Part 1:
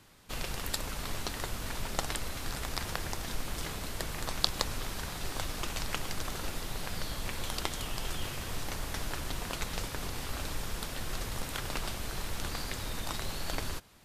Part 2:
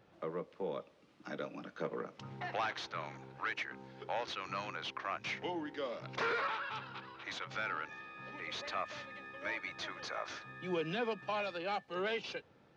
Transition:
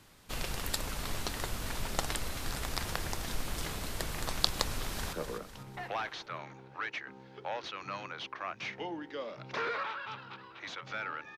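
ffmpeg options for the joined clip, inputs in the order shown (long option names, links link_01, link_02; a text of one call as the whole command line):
ffmpeg -i cue0.wav -i cue1.wav -filter_complex "[0:a]apad=whole_dur=11.37,atrim=end=11.37,atrim=end=5.132[link_01];[1:a]atrim=start=1.768:end=8.01[link_02];[link_01][link_02]acrossfade=duration=0.004:curve1=hsin:curve2=hsin,asplit=2[link_03][link_04];[link_04]afade=type=in:start_time=4.67:duration=0.01,afade=type=out:start_time=5.13:duration=0.01,aecho=0:1:250|500|750|1000|1250:0.398107|0.179148|0.0806167|0.0362775|0.0163249[link_05];[link_03][link_05]amix=inputs=2:normalize=0" out.wav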